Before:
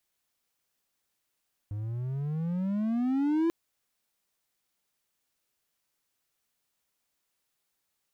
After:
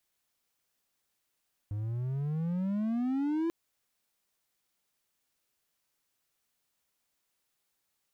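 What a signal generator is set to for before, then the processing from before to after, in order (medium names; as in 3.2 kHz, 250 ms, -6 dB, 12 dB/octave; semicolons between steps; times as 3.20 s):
gliding synth tone triangle, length 1.79 s, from 101 Hz, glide +21 st, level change +9.5 dB, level -20.5 dB
compression, threshold -28 dBFS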